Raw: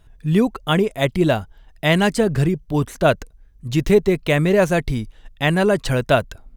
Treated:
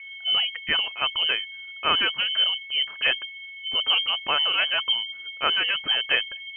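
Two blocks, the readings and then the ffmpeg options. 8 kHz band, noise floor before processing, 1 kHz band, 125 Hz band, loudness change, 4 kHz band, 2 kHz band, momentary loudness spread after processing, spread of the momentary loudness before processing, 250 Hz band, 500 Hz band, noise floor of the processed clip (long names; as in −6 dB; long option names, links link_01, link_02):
below −40 dB, −50 dBFS, −5.5 dB, below −30 dB, −3.5 dB, +11.0 dB, −0.5 dB, 6 LU, 7 LU, −27.5 dB, −20.5 dB, −41 dBFS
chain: -af "aeval=exprs='0.708*(cos(1*acos(clip(val(0)/0.708,-1,1)))-cos(1*PI/2))+0.112*(cos(2*acos(clip(val(0)/0.708,-1,1)))-cos(2*PI/2))':channel_layout=same,equalizer=frequency=410:width_type=o:width=1.9:gain=-14,aeval=exprs='val(0)+0.0126*sin(2*PI*1000*n/s)':channel_layout=same,lowpass=frequency=2700:width_type=q:width=0.5098,lowpass=frequency=2700:width_type=q:width=0.6013,lowpass=frequency=2700:width_type=q:width=0.9,lowpass=frequency=2700:width_type=q:width=2.563,afreqshift=-3200"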